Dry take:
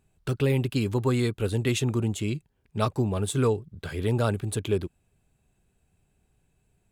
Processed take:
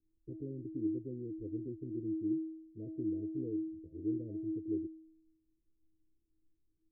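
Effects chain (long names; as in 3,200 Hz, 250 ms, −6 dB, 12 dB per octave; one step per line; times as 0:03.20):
Chebyshev low-pass filter 520 Hz, order 8
tuned comb filter 320 Hz, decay 0.83 s, mix 100%
level +16 dB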